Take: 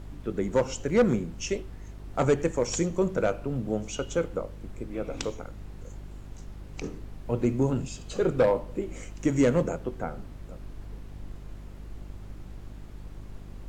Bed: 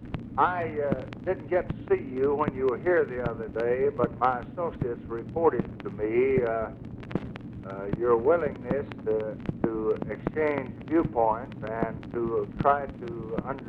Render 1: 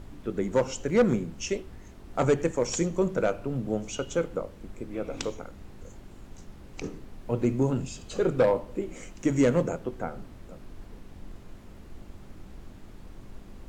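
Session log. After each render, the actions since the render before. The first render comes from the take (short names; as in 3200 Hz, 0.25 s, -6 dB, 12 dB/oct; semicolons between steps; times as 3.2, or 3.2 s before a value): de-hum 50 Hz, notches 3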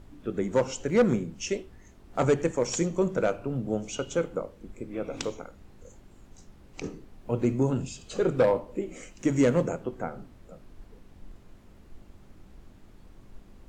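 noise print and reduce 6 dB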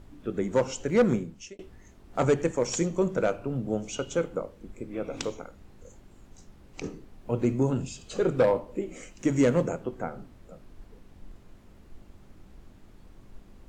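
1.15–1.59 fade out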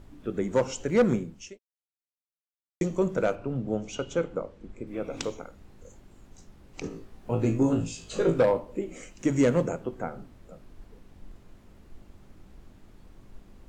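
1.59–2.81 mute; 3.35–4.87 air absorption 65 m; 6.89–8.39 flutter echo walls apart 3.1 m, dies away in 0.25 s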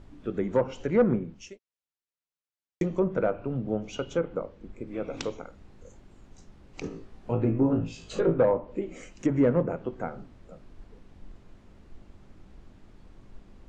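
Bessel low-pass 6300 Hz, order 2; treble ducked by the level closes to 1500 Hz, closed at -21 dBFS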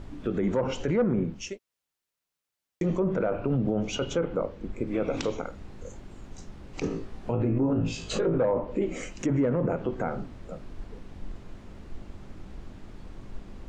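in parallel at -1 dB: negative-ratio compressor -31 dBFS, ratio -0.5; on the sum: limiter -17.5 dBFS, peak gain reduction 8 dB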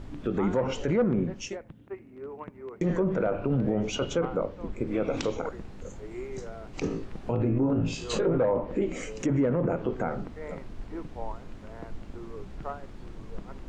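add bed -15 dB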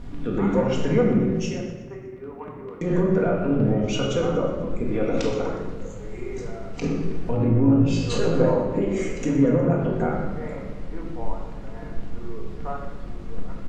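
feedback echo 0.121 s, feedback 52%, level -15 dB; shoebox room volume 720 m³, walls mixed, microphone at 1.8 m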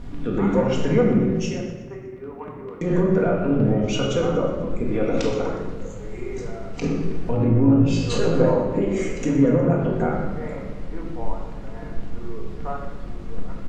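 gain +1.5 dB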